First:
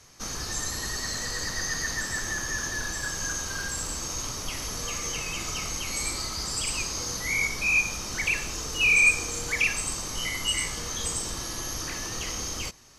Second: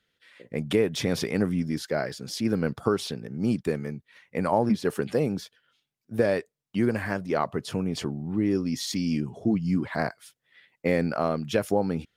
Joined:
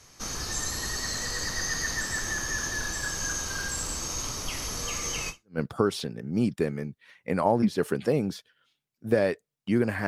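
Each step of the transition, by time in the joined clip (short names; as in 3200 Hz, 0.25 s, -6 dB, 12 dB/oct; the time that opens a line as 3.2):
first
5.44 switch to second from 2.51 s, crossfade 0.30 s exponential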